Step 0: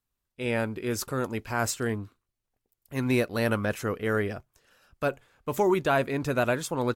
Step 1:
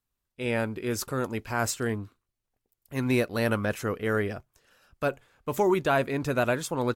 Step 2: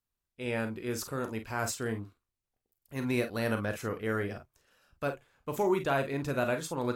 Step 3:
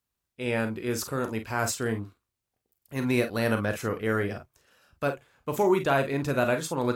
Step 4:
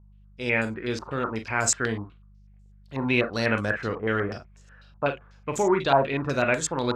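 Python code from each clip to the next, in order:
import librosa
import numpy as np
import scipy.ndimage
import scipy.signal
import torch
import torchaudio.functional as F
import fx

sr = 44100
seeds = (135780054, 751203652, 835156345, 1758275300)

y1 = x
y2 = fx.room_early_taps(y1, sr, ms=(36, 49), db=(-10.0, -10.5))
y2 = y2 * 10.0 ** (-5.5 / 20.0)
y3 = scipy.signal.sosfilt(scipy.signal.butter(2, 48.0, 'highpass', fs=sr, output='sos'), y2)
y3 = y3 * 10.0 ** (5.0 / 20.0)
y4 = fx.dmg_buzz(y3, sr, base_hz=50.0, harmonics=4, level_db=-53.0, tilt_db=-7, odd_only=False)
y4 = fx.filter_held_lowpass(y4, sr, hz=8.1, low_hz=930.0, high_hz=7300.0)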